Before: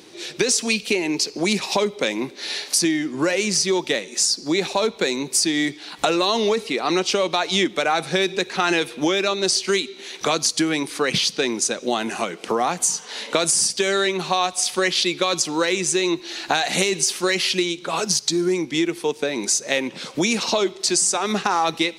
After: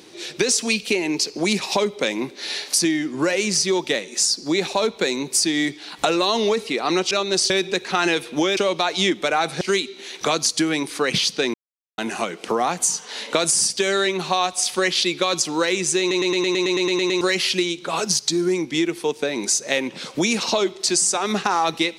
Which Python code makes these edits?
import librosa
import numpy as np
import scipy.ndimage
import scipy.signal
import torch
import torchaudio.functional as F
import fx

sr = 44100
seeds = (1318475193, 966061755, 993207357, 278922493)

y = fx.edit(x, sr, fx.swap(start_s=7.11, length_s=1.04, other_s=9.22, other_length_s=0.39),
    fx.silence(start_s=11.54, length_s=0.44),
    fx.stutter_over(start_s=16.0, slice_s=0.11, count=11), tone=tone)